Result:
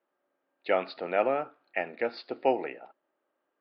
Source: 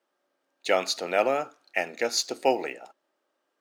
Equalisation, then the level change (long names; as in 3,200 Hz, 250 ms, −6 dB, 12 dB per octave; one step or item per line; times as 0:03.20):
elliptic low-pass filter 4,900 Hz, stop band 40 dB
high-frequency loss of the air 450 metres
0.0 dB